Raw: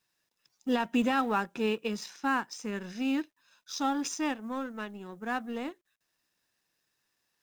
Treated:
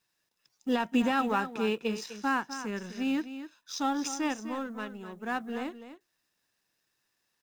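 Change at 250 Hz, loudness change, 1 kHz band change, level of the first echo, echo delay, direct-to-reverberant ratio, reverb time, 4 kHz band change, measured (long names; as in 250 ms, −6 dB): +0.5 dB, +0.5 dB, +0.5 dB, −11.5 dB, 253 ms, no reverb audible, no reverb audible, +0.5 dB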